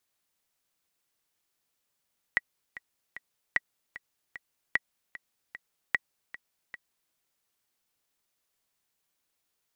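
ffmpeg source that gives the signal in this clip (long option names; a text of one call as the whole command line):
ffmpeg -f lavfi -i "aevalsrc='pow(10,(-10.5-17*gte(mod(t,3*60/151),60/151))/20)*sin(2*PI*1930*mod(t,60/151))*exp(-6.91*mod(t,60/151)/0.03)':duration=4.76:sample_rate=44100" out.wav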